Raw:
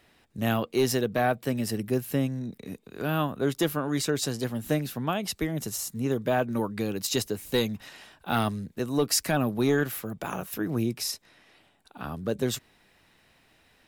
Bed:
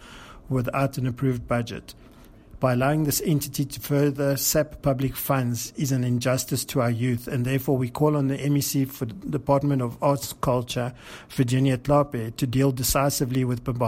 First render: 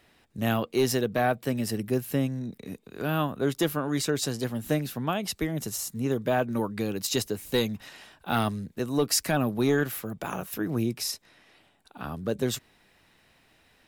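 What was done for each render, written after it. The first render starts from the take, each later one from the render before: nothing audible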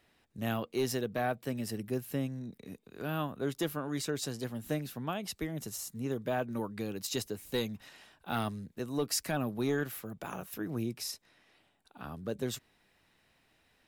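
gain -7.5 dB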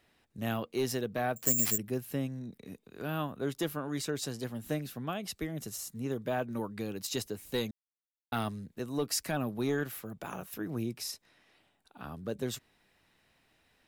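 1.36–1.78 careless resampling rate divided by 6×, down none, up zero stuff; 4.79–5.89 notch 910 Hz, Q 8.4; 7.71–8.32 mute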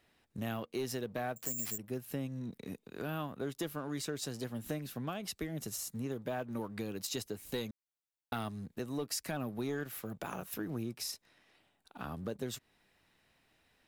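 compressor 2.5:1, threshold -42 dBFS, peak gain reduction 14.5 dB; sample leveller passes 1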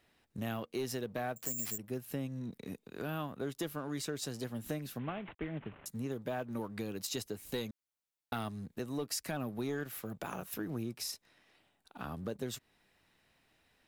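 4.99–5.86 CVSD 16 kbps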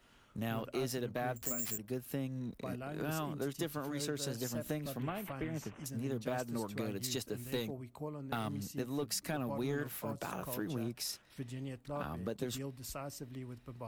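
add bed -22 dB

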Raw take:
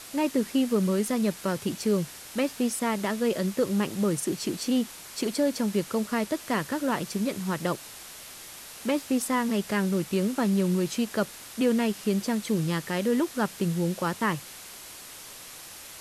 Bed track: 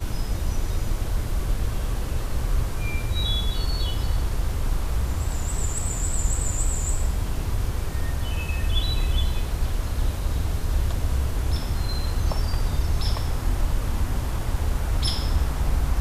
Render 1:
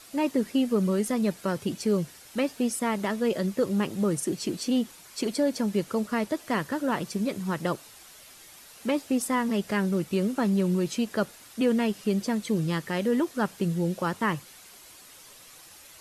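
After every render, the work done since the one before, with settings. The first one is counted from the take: denoiser 8 dB, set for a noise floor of -44 dBFS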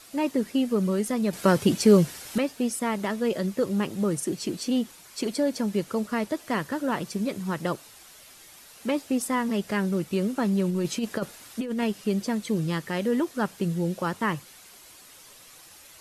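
1.33–2.38 gain +8.5 dB; 10.69–11.84 negative-ratio compressor -26 dBFS, ratio -0.5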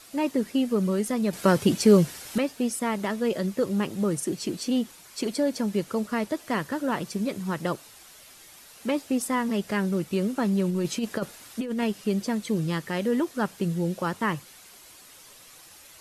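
nothing audible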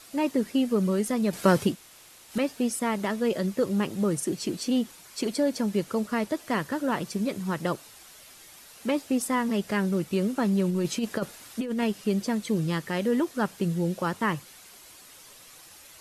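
1.7–2.34 room tone, crossfade 0.16 s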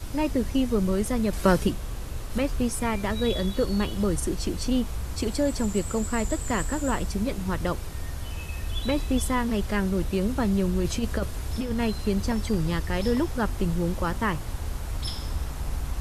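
add bed track -7.5 dB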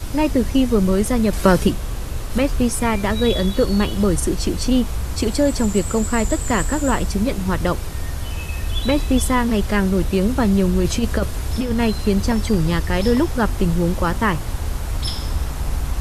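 gain +7.5 dB; limiter -1 dBFS, peak gain reduction 2 dB

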